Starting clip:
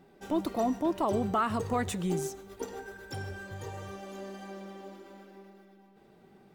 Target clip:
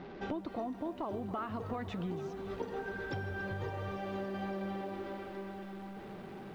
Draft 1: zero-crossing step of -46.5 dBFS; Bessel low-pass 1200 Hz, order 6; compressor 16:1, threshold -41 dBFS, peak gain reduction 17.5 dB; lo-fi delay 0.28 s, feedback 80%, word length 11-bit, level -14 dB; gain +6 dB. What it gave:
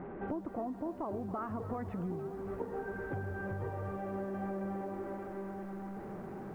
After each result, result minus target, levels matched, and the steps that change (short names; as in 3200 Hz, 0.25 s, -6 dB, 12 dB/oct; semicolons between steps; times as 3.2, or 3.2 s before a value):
4000 Hz band -17.0 dB; zero-crossing step: distortion +6 dB
change: Bessel low-pass 3000 Hz, order 6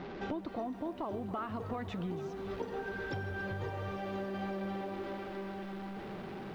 zero-crossing step: distortion +6 dB
change: zero-crossing step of -52.5 dBFS